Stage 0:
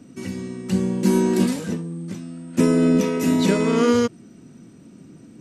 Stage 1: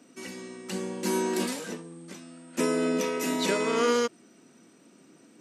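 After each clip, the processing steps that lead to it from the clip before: Bessel high-pass 520 Hz, order 2; gain -1.5 dB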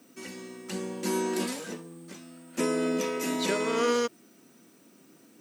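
added noise blue -65 dBFS; gain -1.5 dB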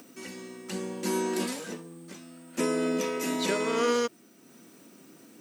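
upward compressor, threshold -46 dBFS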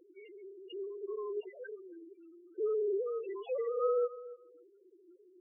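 sine-wave speech; feedback echo 0.285 s, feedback 23%, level -17 dB; loudest bins only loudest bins 4; gain -5.5 dB

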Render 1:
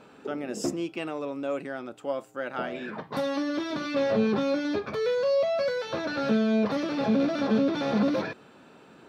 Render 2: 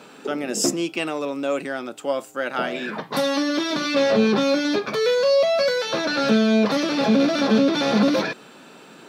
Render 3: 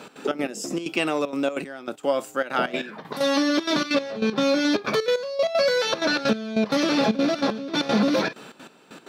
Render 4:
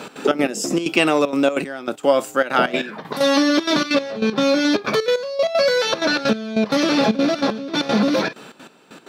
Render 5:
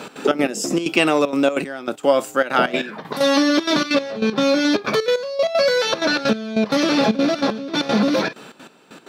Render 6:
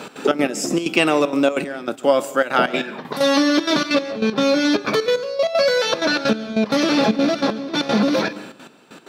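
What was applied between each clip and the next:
HPF 140 Hz 24 dB/oct; high shelf 2900 Hz +10.5 dB; gain +6 dB
compressor, threshold -20 dBFS, peak gain reduction 7 dB; step gate "x.xx.x...x.xxxx" 192 bpm -12 dB; gain +3 dB
vocal rider within 4 dB 2 s; gain +4.5 dB
nothing audible
reverb RT60 0.65 s, pre-delay 0.14 s, DRR 17.5 dB

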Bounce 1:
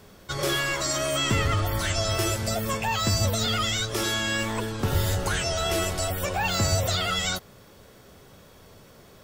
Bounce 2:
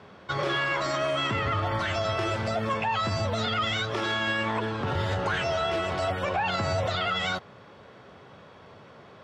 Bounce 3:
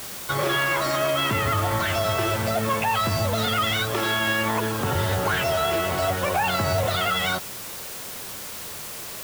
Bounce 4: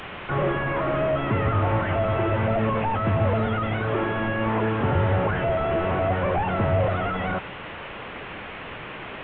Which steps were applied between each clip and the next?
Chebyshev band-pass 110–3100 Hz, order 2; bell 970 Hz +7 dB 1.8 oct; limiter -19 dBFS, peak gain reduction 7.5 dB
added noise white -40 dBFS; gain +4 dB
delta modulation 16 kbps, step -36 dBFS; gain +3.5 dB

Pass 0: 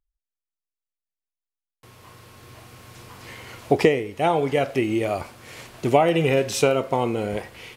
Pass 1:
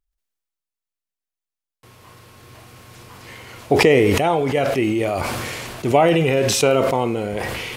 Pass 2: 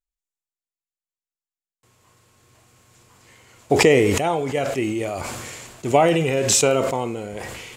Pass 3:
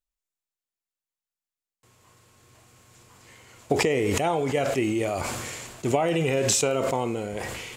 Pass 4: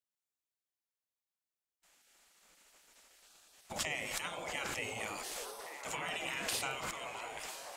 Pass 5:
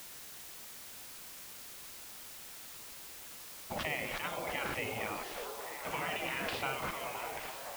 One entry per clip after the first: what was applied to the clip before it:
sustainer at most 20 dB/s; gain +1 dB
bell 7300 Hz +11.5 dB 0.44 oct; upward expander 1.5:1, over -36 dBFS
compressor 12:1, threshold -19 dBFS, peak gain reduction 10 dB
spectral gate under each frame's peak -15 dB weak; delay with a stepping band-pass 0.605 s, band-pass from 550 Hz, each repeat 0.7 oct, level -2 dB; gain -4.5 dB
air absorption 310 m; added noise white -54 dBFS; gain +5 dB

